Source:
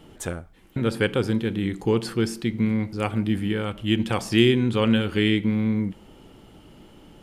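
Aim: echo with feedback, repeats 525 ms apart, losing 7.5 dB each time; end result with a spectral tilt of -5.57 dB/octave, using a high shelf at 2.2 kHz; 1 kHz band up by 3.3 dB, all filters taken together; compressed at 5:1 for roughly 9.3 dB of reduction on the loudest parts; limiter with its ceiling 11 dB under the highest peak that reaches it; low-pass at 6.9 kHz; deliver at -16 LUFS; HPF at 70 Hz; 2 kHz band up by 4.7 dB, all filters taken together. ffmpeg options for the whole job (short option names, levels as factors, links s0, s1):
-af "highpass=70,lowpass=6900,equalizer=f=1000:t=o:g=3,equalizer=f=2000:t=o:g=7.5,highshelf=f=2200:g=-4.5,acompressor=threshold=0.0794:ratio=5,alimiter=limit=0.0944:level=0:latency=1,aecho=1:1:525|1050|1575|2100|2625:0.422|0.177|0.0744|0.0312|0.0131,volume=6.31"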